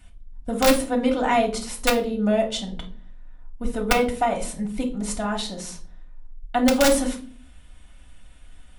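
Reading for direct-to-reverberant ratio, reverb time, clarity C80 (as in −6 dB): −0.5 dB, non-exponential decay, 17.5 dB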